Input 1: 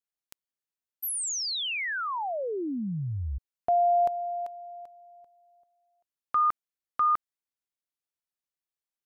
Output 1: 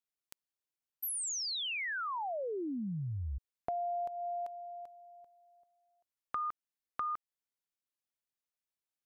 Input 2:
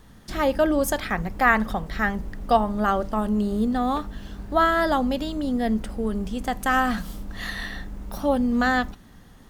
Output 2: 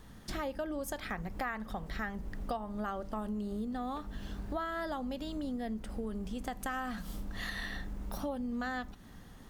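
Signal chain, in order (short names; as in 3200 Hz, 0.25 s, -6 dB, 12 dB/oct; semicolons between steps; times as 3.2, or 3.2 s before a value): compressor 6:1, threshold -32 dBFS; gain -3 dB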